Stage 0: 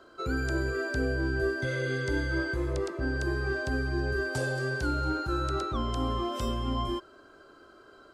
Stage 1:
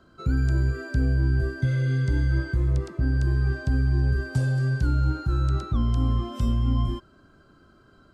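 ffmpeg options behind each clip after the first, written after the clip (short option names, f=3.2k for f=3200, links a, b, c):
-af "lowshelf=f=270:t=q:w=1.5:g=13.5,volume=-4dB"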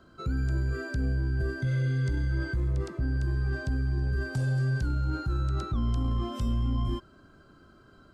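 -af "alimiter=limit=-22dB:level=0:latency=1:release=11"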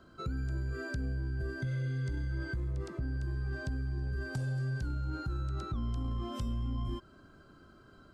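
-af "acompressor=threshold=-32dB:ratio=3,volume=-1.5dB"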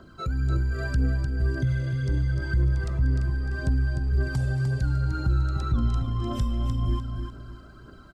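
-filter_complex "[0:a]aphaser=in_gain=1:out_gain=1:delay=1.7:decay=0.47:speed=1.9:type=triangular,asplit=2[a][b];[b]aecho=0:1:301|602|903|1204:0.473|0.156|0.0515|0.017[c];[a][c]amix=inputs=2:normalize=0,volume=5.5dB"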